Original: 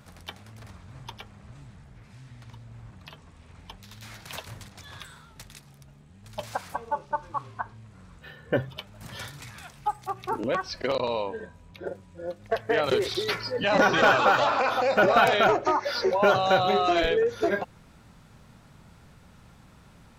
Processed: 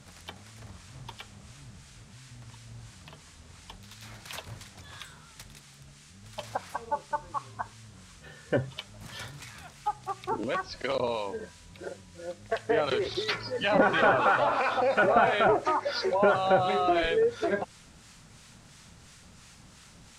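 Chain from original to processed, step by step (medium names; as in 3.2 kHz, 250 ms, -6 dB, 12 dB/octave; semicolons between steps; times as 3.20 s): low-pass that closes with the level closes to 2.2 kHz, closed at -17 dBFS; band noise 1.1–8.7 kHz -55 dBFS; harmonic tremolo 2.9 Hz, depth 50%, crossover 1 kHz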